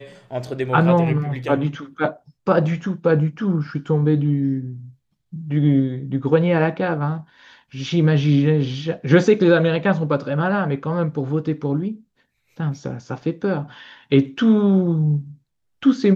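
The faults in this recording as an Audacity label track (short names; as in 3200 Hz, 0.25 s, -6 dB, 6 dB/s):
13.220000	13.220000	gap 2.3 ms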